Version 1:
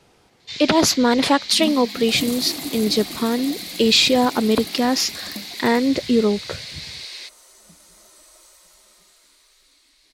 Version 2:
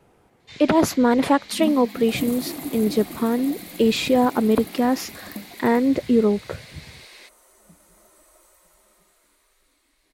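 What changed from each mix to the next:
master: add peaking EQ 4.7 kHz -14.5 dB 1.7 oct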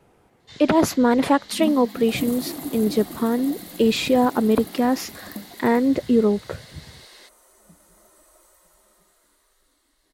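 first sound: add peaking EQ 2.4 kHz -14 dB 0.25 oct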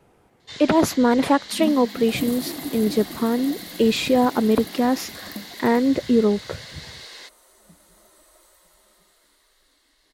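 first sound +7.0 dB

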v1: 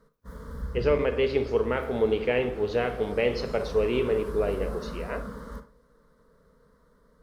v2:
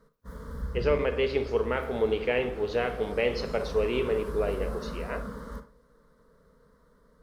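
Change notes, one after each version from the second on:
speech: add bass shelf 340 Hz -5.5 dB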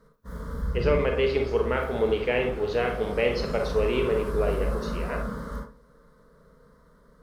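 speech: send +9.5 dB; background: send +11.5 dB

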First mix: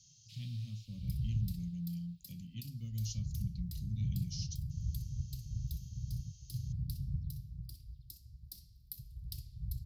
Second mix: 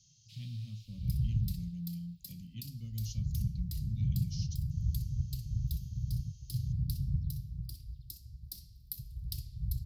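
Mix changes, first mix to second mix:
speech: add treble shelf 5.8 kHz -6 dB; second sound +5.0 dB

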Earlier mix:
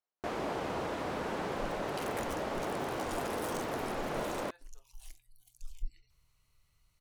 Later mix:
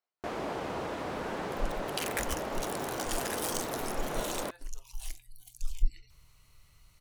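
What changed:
speech +5.0 dB; second sound +11.0 dB

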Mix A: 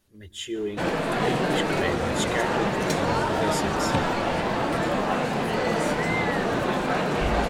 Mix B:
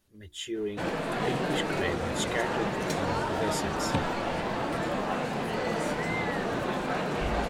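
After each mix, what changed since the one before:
background -5.5 dB; reverb: off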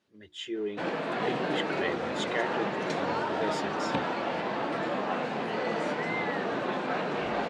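master: add band-pass 200–4400 Hz

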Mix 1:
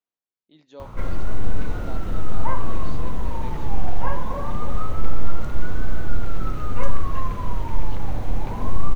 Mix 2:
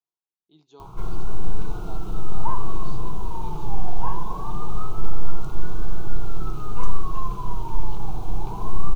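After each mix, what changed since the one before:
master: add static phaser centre 370 Hz, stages 8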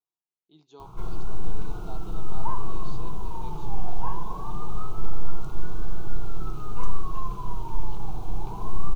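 background -3.5 dB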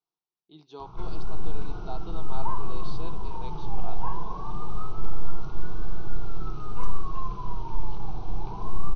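speech +6.5 dB; master: add Chebyshev low-pass 5.9 kHz, order 6

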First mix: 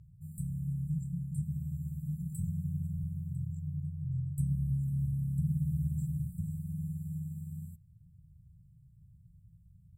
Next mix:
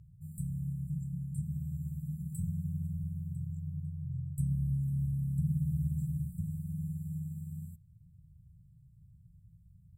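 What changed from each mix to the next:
speech -4.5 dB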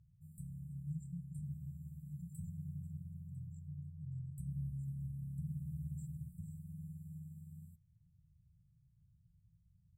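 speech: add high-pass 160 Hz; background -11.0 dB

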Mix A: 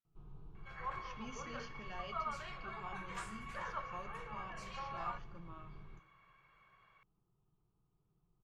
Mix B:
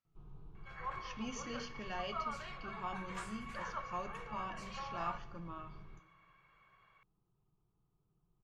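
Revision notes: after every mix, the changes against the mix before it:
speech +6.5 dB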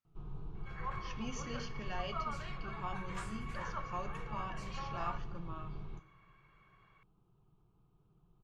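first sound +9.0 dB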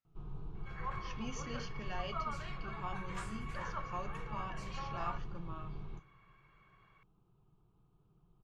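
speech: send -11.5 dB

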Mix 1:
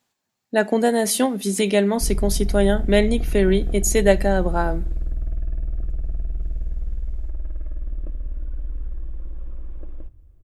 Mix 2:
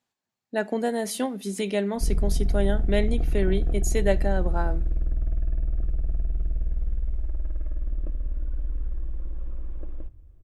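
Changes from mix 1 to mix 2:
speech -7.5 dB; master: add treble shelf 6.3 kHz -5 dB

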